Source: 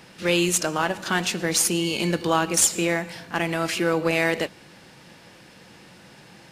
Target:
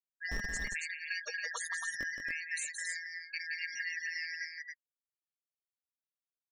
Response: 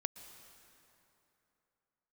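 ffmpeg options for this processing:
-filter_complex "[0:a]afftfilt=real='real(if(lt(b,272),68*(eq(floor(b/68),0)*2+eq(floor(b/68),1)*0+eq(floor(b/68),2)*3+eq(floor(b/68),3)*1)+mod(b,68),b),0)':imag='imag(if(lt(b,272),68*(eq(floor(b/68),0)*2+eq(floor(b/68),1)*0+eq(floor(b/68),2)*3+eq(floor(b/68),3)*1)+mod(b,68),b),0)':win_size=2048:overlap=0.75,lowpass=9100,afftfilt=real='re*gte(hypot(re,im),0.126)':imag='im*gte(hypot(re,im),0.126)':win_size=1024:overlap=0.75,equalizer=frequency=125:width_type=o:width=1:gain=-7,equalizer=frequency=250:width_type=o:width=1:gain=-12,equalizer=frequency=1000:width_type=o:width=1:gain=3,equalizer=frequency=4000:width_type=o:width=1:gain=-6,acrossover=split=210[link_01][link_02];[link_01]acrusher=bits=5:mix=0:aa=0.000001[link_03];[link_02]acompressor=threshold=-33dB:ratio=8[link_04];[link_03][link_04]amix=inputs=2:normalize=0,flanger=delay=3.5:depth=3.2:regen=48:speed=0.46:shape=sinusoidal,aecho=1:1:172|277:0.501|0.562"

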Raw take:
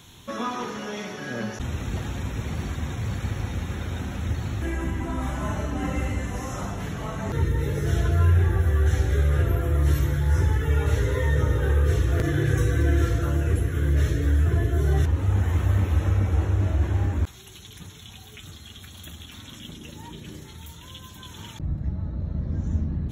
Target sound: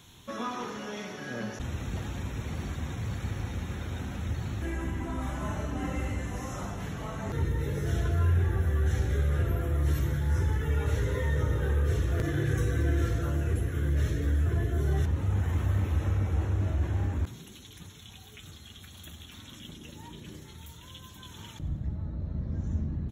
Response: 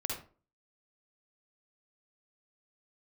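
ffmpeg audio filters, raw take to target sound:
-filter_complex "[0:a]asplit=2[link_01][link_02];[link_02]asoftclip=type=hard:threshold=-22.5dB,volume=-12dB[link_03];[link_01][link_03]amix=inputs=2:normalize=0,asplit=7[link_04][link_05][link_06][link_07][link_08][link_09][link_10];[link_05]adelay=92,afreqshift=42,volume=-18dB[link_11];[link_06]adelay=184,afreqshift=84,volume=-22.2dB[link_12];[link_07]adelay=276,afreqshift=126,volume=-26.3dB[link_13];[link_08]adelay=368,afreqshift=168,volume=-30.5dB[link_14];[link_09]adelay=460,afreqshift=210,volume=-34.6dB[link_15];[link_10]adelay=552,afreqshift=252,volume=-38.8dB[link_16];[link_04][link_11][link_12][link_13][link_14][link_15][link_16]amix=inputs=7:normalize=0,volume=-7dB"

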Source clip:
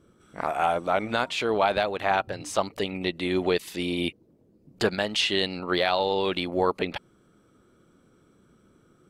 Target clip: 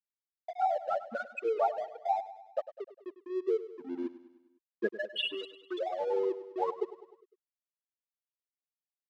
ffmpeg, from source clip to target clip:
ffmpeg -i in.wav -filter_complex "[0:a]asettb=1/sr,asplit=3[link_01][link_02][link_03];[link_01]atrim=end=1.494[link_04];[link_02]atrim=start=1.49:end=3.6,asetpts=PTS-STARTPTS,afade=type=in:duration=0.004:curve=qsin,afade=type=out:start_time=2.106:duration=0.004:curve=qsin,aeval=exprs='if(lt(val(0),0),0.708*val(0),val(0))':channel_layout=same[link_05];[link_03]atrim=start=3.596[link_06];[link_04][link_05]acrossfade=duration=0.004:curve1=hsin:curve2=qsin[link_07];[link_07][link_06]acrossfade=duration=0.004:curve1=qsin:curve2=hsin,aemphasis=mode=production:type=50kf,afftfilt=real='re*gte(hypot(re,im),0.316)':imag='im*gte(hypot(re,im),0.316)':win_size=1024:overlap=0.75,agate=range=-33dB:threshold=-42dB:ratio=3:detection=peak,acrusher=bits=11:mix=0:aa=0.000001,aphaser=in_gain=1:out_gain=1:delay=3.8:decay=0.38:speed=0.48:type=sinusoidal,aeval=exprs='sgn(val(0))*max(abs(val(0))-0.00631,0)':channel_layout=same,highpass=160,lowpass=4900,aecho=1:1:101|202|303|404|505:0.188|0.102|0.0549|0.0297|0.016,volume=-4.5dB" out.wav

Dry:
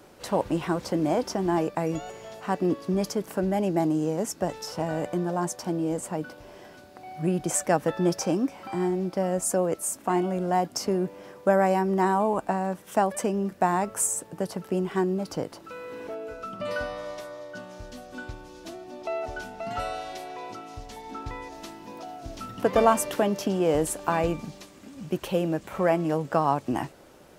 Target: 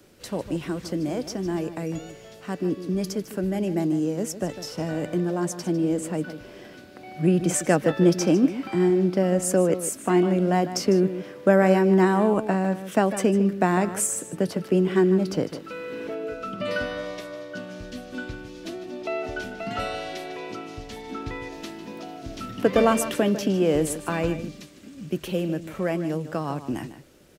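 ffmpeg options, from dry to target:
ffmpeg -i in.wav -filter_complex "[0:a]equalizer=frequency=880:width=1.1:gain=-11.5,acrossover=split=140|4100[link_01][link_02][link_03];[link_02]dynaudnorm=framelen=970:gausssize=11:maxgain=9dB[link_04];[link_01][link_04][link_03]amix=inputs=3:normalize=0,asplit=2[link_05][link_06];[link_06]adelay=151.6,volume=-12dB,highshelf=frequency=4000:gain=-3.41[link_07];[link_05][link_07]amix=inputs=2:normalize=0" out.wav

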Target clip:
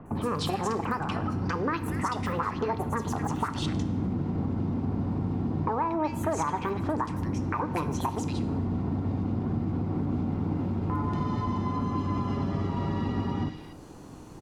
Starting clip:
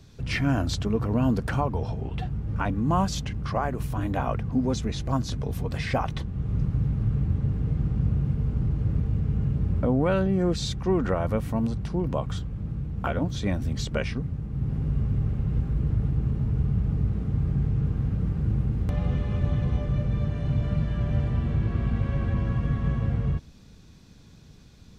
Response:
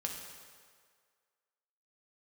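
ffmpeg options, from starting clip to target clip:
-filter_complex "[0:a]equalizer=frequency=620:width_type=o:width=1:gain=11.5,acompressor=threshold=-30dB:ratio=6,acrossover=split=1200|5300[link_01][link_02][link_03];[link_03]adelay=100[link_04];[link_02]adelay=410[link_05];[link_01][link_05][link_04]amix=inputs=3:normalize=0,asplit=2[link_06][link_07];[1:a]atrim=start_sample=2205,lowpass=6200[link_08];[link_07][link_08]afir=irnorm=-1:irlink=0,volume=-4dB[link_09];[link_06][link_09]amix=inputs=2:normalize=0,asetrate=76440,aresample=44100"

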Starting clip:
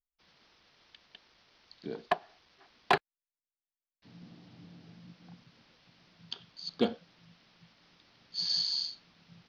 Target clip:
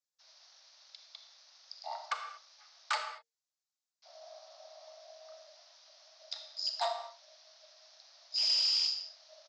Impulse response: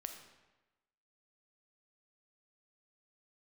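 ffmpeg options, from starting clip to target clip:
-filter_complex "[0:a]highpass=85,aeval=exprs='0.188*(cos(1*acos(clip(val(0)/0.188,-1,1)))-cos(1*PI/2))+0.00841*(cos(5*acos(clip(val(0)/0.188,-1,1)))-cos(5*PI/2))':channel_layout=same,acrossover=split=130|2600[link_01][link_02][link_03];[link_03]alimiter=level_in=3.5dB:limit=-24dB:level=0:latency=1:release=10,volume=-3.5dB[link_04];[link_01][link_02][link_04]amix=inputs=3:normalize=0,highshelf=frequency=3100:width_type=q:width=1.5:gain=8,aresample=16000,asoftclip=type=hard:threshold=-23dB,aresample=44100,afreqshift=460[link_05];[1:a]atrim=start_sample=2205,afade=type=out:start_time=0.29:duration=0.01,atrim=end_sample=13230[link_06];[link_05][link_06]afir=irnorm=-1:irlink=0"

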